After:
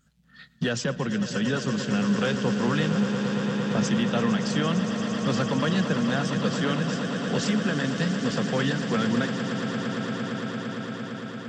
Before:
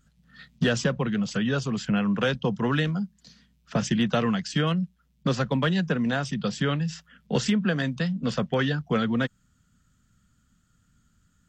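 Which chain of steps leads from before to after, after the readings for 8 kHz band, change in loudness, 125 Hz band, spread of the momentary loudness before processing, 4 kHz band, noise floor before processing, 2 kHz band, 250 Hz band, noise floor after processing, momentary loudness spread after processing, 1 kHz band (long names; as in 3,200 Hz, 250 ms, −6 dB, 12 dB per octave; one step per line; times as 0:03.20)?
+2.5 dB, +0.5 dB, −0.5 dB, 6 LU, +1.5 dB, −67 dBFS, +1.0 dB, +2.0 dB, −45 dBFS, 6 LU, +1.5 dB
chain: low-shelf EQ 60 Hz −11 dB
brickwall limiter −17 dBFS, peak gain reduction 4.5 dB
on a send: echo that builds up and dies away 114 ms, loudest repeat 8, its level −12 dB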